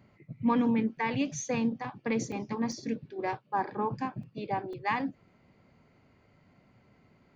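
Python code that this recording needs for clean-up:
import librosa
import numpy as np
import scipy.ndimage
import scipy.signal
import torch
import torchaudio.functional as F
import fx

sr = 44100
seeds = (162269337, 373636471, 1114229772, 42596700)

y = fx.fix_interpolate(x, sr, at_s=(0.97, 2.32, 2.72, 4.23, 4.73), length_ms=3.9)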